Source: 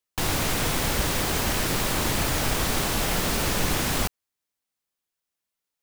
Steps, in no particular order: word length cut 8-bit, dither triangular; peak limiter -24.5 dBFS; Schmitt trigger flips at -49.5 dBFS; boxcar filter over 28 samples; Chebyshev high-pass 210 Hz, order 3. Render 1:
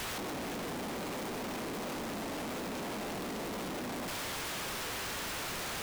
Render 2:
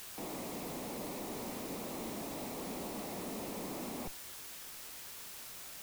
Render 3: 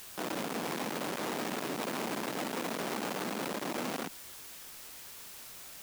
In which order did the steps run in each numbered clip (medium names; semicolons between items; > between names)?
boxcar filter > peak limiter > Chebyshev high-pass > word length cut > Schmitt trigger; Chebyshev high-pass > peak limiter > Schmitt trigger > boxcar filter > word length cut; boxcar filter > Schmitt trigger > Chebyshev high-pass > word length cut > peak limiter